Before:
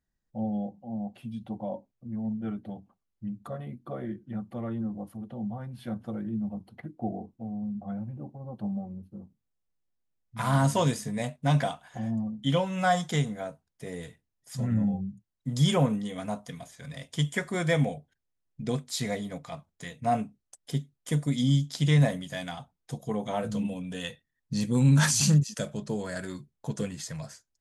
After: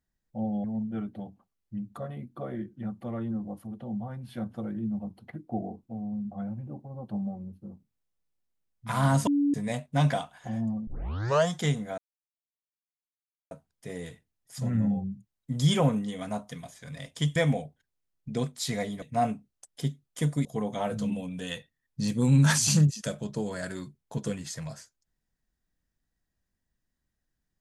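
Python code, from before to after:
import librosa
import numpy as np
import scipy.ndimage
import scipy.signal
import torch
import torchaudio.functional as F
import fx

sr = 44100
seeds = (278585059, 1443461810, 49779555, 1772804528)

y = fx.edit(x, sr, fx.cut(start_s=0.64, length_s=1.5),
    fx.bleep(start_s=10.77, length_s=0.27, hz=286.0, db=-21.0),
    fx.tape_start(start_s=12.37, length_s=0.61),
    fx.insert_silence(at_s=13.48, length_s=1.53),
    fx.cut(start_s=17.33, length_s=0.35),
    fx.cut(start_s=19.34, length_s=0.58),
    fx.cut(start_s=21.35, length_s=1.63), tone=tone)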